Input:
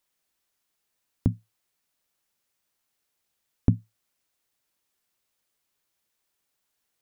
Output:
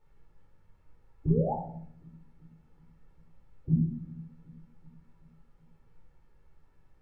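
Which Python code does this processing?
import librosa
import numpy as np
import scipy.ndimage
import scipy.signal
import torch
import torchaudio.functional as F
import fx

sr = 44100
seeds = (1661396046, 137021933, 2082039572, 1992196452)

p1 = scipy.signal.sosfilt(scipy.signal.butter(2, 1200.0, 'lowpass', fs=sr, output='sos'), x)
p2 = fx.spec_gate(p1, sr, threshold_db=-20, keep='strong')
p3 = fx.low_shelf(p2, sr, hz=200.0, db=-8.5)
p4 = p3 + 0.57 * np.pad(p3, (int(3.4 * sr / 1000.0), 0))[:len(p3)]
p5 = fx.dynamic_eq(p4, sr, hz=390.0, q=5.7, threshold_db=-53.0, ratio=4.0, max_db=3)
p6 = fx.over_compress(p5, sr, threshold_db=-32.0, ratio=-1.0)
p7 = fx.pitch_keep_formants(p6, sr, semitones=7.0)
p8 = fx.dmg_noise_colour(p7, sr, seeds[0], colour='brown', level_db=-72.0)
p9 = p8 + fx.echo_feedback(p8, sr, ms=380, feedback_pct=58, wet_db=-21, dry=0)
p10 = fx.spec_paint(p9, sr, seeds[1], shape='rise', start_s=1.3, length_s=0.24, low_hz=370.0, high_hz=910.0, level_db=-38.0)
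p11 = fx.room_shoebox(p10, sr, seeds[2], volume_m3=870.0, walls='furnished', distance_m=4.3)
y = p11 * librosa.db_to_amplitude(1.5)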